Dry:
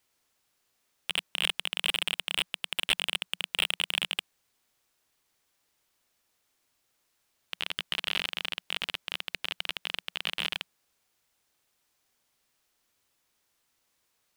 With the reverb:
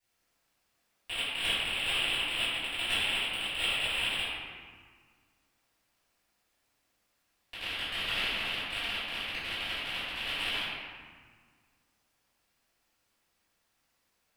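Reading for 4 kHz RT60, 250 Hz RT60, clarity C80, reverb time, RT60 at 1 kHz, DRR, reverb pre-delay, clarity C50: 1.1 s, 2.2 s, -1.0 dB, 1.7 s, 1.7 s, -18.5 dB, 3 ms, -3.5 dB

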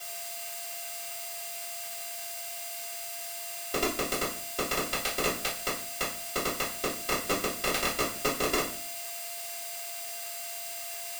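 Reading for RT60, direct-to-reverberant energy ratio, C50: 0.40 s, -11.5 dB, 7.5 dB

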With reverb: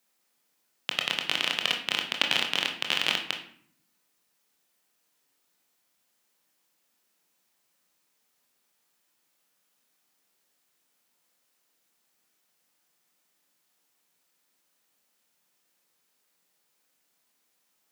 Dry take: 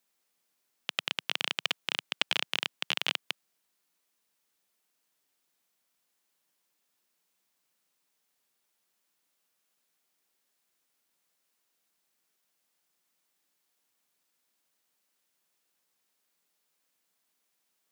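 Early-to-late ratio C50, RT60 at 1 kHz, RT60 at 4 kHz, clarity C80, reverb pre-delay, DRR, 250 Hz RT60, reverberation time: 8.0 dB, 0.60 s, 0.40 s, 12.0 dB, 21 ms, 2.0 dB, 1.0 s, 0.60 s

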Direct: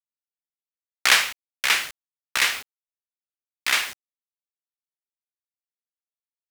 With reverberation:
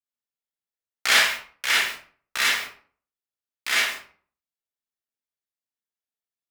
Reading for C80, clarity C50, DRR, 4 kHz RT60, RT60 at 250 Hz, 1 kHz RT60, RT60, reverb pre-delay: 7.5 dB, 2.0 dB, -6.0 dB, 0.30 s, 0.50 s, 0.45 s, 0.45 s, 30 ms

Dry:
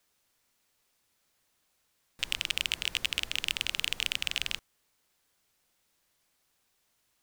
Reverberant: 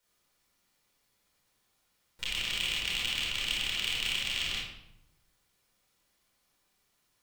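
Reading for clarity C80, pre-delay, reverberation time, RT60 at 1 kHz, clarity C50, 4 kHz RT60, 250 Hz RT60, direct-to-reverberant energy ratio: 4.5 dB, 26 ms, 0.80 s, 0.75 s, -0.5 dB, 0.60 s, 1.0 s, -5.5 dB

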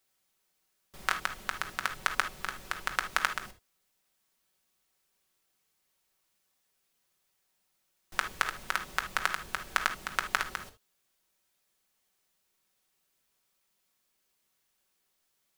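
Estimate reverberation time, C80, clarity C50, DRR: not exponential, 23.0 dB, 11.0 dB, 4.0 dB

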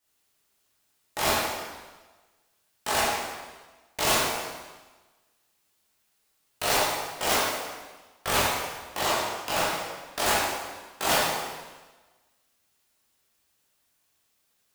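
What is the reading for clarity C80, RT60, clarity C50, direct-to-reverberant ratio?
1.5 dB, 1.3 s, -1.5 dB, -8.5 dB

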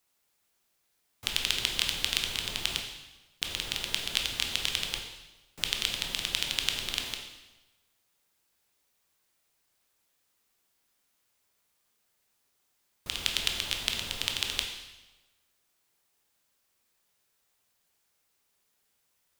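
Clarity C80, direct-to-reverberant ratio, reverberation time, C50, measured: 7.0 dB, 2.0 dB, 1.1 s, 5.0 dB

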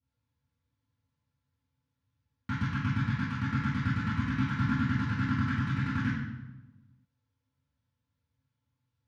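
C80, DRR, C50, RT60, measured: 1.5 dB, -12.0 dB, -1.0 dB, 1.1 s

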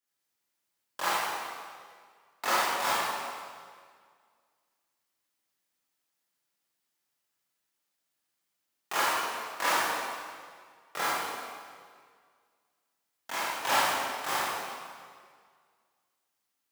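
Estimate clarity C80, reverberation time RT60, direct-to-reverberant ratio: -1.0 dB, 1.9 s, -10.0 dB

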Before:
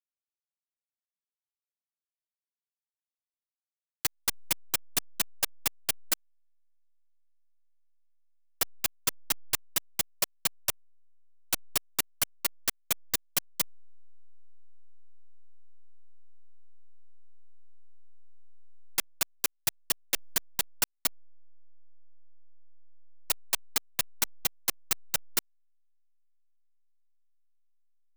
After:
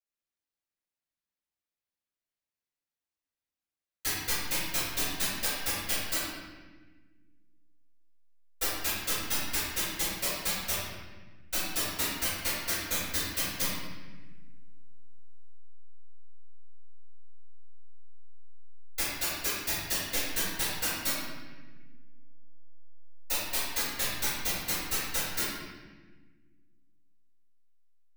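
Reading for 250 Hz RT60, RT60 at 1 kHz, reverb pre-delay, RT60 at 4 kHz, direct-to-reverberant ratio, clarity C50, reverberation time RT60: 2.3 s, 1.2 s, 3 ms, 1.0 s, -16.0 dB, -2.0 dB, 1.3 s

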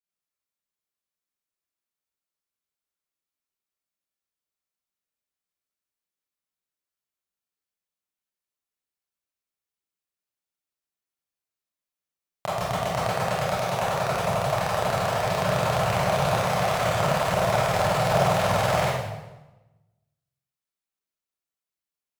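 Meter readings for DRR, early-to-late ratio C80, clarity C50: -10.5 dB, 1.5 dB, -2.0 dB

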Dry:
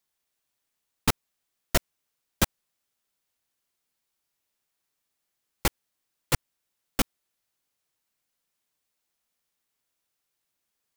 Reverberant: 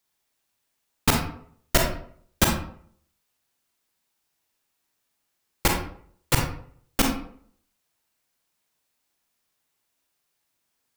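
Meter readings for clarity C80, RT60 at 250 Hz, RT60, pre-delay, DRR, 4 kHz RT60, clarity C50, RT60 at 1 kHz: 9.0 dB, 0.60 s, 0.60 s, 30 ms, 1.0 dB, 0.35 s, 4.5 dB, 0.55 s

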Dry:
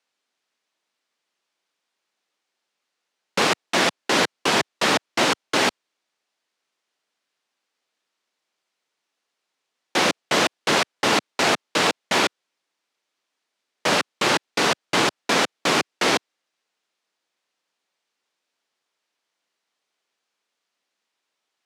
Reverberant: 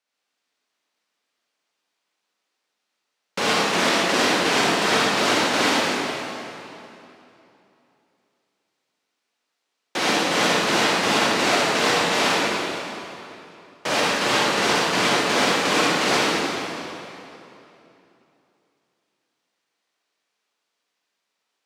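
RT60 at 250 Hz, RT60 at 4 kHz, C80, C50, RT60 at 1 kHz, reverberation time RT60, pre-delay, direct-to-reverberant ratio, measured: 3.2 s, 2.4 s, -3.5 dB, -5.5 dB, 2.9 s, 3.0 s, 37 ms, -7.0 dB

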